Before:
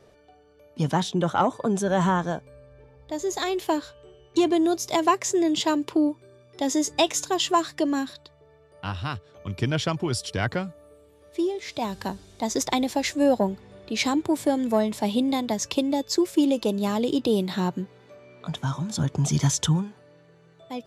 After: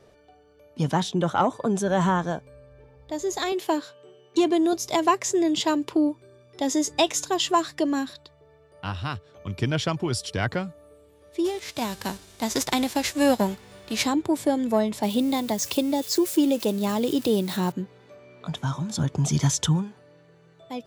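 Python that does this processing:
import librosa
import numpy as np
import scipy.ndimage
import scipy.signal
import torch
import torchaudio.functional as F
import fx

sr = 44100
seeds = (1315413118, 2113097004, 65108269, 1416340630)

y = fx.highpass(x, sr, hz=140.0, slope=24, at=(3.52, 4.73))
y = fx.envelope_flatten(y, sr, power=0.6, at=(11.44, 14.04), fade=0.02)
y = fx.crossing_spikes(y, sr, level_db=-28.5, at=(15.03, 17.72))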